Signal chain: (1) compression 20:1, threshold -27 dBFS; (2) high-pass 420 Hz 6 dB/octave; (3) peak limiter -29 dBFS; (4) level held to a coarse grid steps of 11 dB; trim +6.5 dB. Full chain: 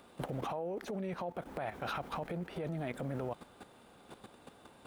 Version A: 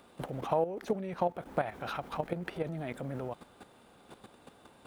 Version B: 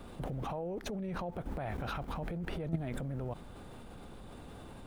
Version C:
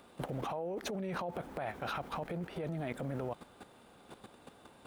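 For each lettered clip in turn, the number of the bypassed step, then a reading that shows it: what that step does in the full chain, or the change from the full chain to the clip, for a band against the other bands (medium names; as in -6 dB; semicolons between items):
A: 3, crest factor change +6.0 dB; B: 2, 125 Hz band +4.0 dB; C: 1, mean gain reduction 3.0 dB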